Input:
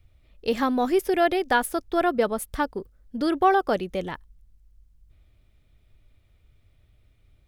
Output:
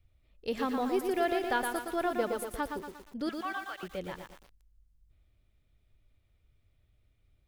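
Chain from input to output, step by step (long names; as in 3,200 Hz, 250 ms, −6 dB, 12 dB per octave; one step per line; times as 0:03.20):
0:03.29–0:03.83: flat-topped band-pass 2,200 Hz, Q 0.84
feedback echo at a low word length 117 ms, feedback 55%, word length 7 bits, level −5 dB
level −9 dB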